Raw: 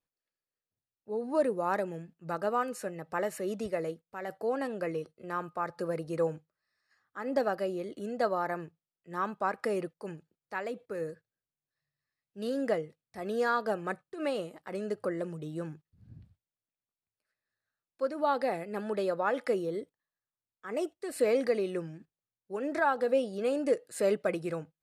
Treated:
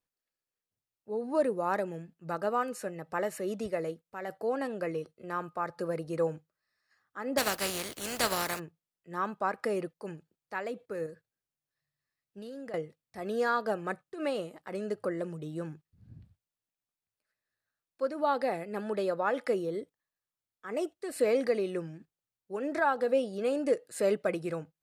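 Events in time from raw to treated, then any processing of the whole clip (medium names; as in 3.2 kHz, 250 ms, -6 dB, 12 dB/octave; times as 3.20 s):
7.37–8.58 s: spectral contrast reduction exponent 0.35
11.06–12.74 s: compression, threshold -40 dBFS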